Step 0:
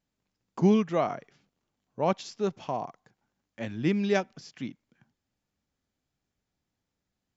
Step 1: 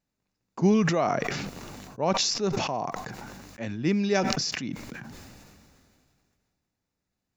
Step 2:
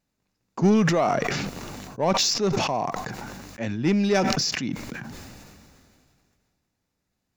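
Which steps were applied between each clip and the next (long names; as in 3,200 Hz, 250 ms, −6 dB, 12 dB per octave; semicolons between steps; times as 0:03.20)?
notch filter 3,200 Hz, Q 8.7; dynamic equaliser 5,500 Hz, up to +7 dB, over −58 dBFS, Q 1.8; level that may fall only so fast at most 25 dB per second
in parallel at −3 dB: gain into a clipping stage and back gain 25.5 dB; on the sum: Ogg Vorbis 192 kbit/s 44,100 Hz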